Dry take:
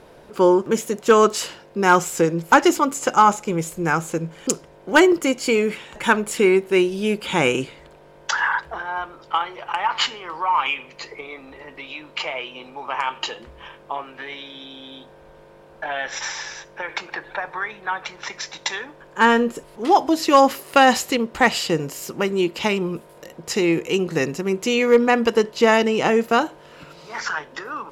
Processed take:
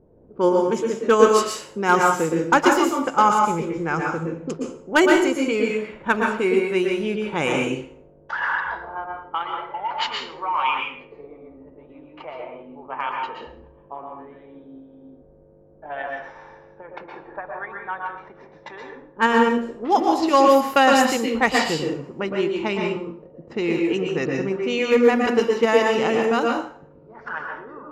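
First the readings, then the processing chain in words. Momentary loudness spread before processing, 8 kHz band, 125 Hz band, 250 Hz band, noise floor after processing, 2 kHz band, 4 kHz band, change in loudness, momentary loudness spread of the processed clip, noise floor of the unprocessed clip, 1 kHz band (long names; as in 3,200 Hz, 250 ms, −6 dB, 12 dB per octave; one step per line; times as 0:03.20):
18 LU, −5.0 dB, −2.5 dB, −1.0 dB, −51 dBFS, −2.0 dB, −3.5 dB, −0.5 dB, 20 LU, −48 dBFS, −1.0 dB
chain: in parallel at −2.5 dB: output level in coarse steps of 13 dB
on the sum: healed spectral selection 0:09.54–0:09.89, 1,000–2,700 Hz before
low-pass that shuts in the quiet parts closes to 320 Hz, open at −11 dBFS
dense smooth reverb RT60 0.51 s, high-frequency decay 0.85×, pre-delay 105 ms, DRR 0.5 dB
level −7 dB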